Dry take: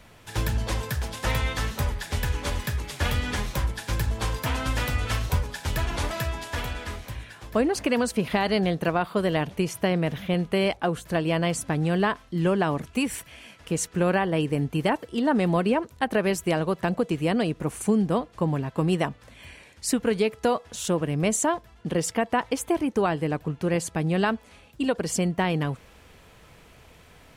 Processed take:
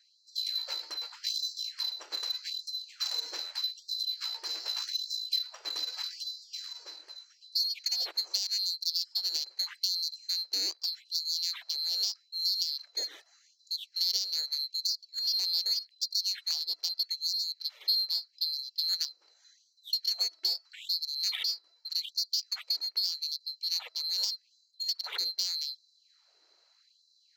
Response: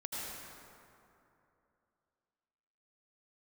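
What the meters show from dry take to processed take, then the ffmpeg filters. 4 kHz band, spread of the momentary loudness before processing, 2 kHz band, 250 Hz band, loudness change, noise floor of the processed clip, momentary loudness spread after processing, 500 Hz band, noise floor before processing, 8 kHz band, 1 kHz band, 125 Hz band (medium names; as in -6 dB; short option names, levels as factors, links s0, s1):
+9.0 dB, 7 LU, -18.5 dB, under -40 dB, -4.5 dB, -68 dBFS, 7 LU, under -30 dB, -53 dBFS, -5.5 dB, under -25 dB, under -40 dB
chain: -af "afftfilt=real='real(if(lt(b,736),b+184*(1-2*mod(floor(b/184),2)),b),0)':imag='imag(if(lt(b,736),b+184*(1-2*mod(floor(b/184),2)),b),0)':win_size=2048:overlap=0.75,adynamicsmooth=sensitivity=1:basefreq=2700,afftfilt=real='re*gte(b*sr/1024,270*pow(3900/270,0.5+0.5*sin(2*PI*0.82*pts/sr)))':imag='im*gte(b*sr/1024,270*pow(3900/270,0.5+0.5*sin(2*PI*0.82*pts/sr)))':win_size=1024:overlap=0.75,volume=0.631"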